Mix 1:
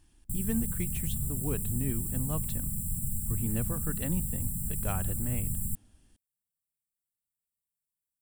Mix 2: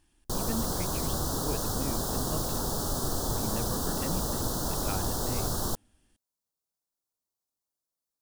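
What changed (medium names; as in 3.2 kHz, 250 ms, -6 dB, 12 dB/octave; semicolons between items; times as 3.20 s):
speech: add tone controls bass -7 dB, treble -3 dB; background: remove brick-wall FIR band-stop 230–7300 Hz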